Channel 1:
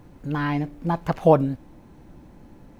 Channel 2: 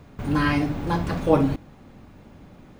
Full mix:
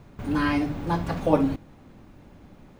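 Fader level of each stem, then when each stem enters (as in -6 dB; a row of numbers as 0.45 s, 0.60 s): -7.5 dB, -3.5 dB; 0.00 s, 0.00 s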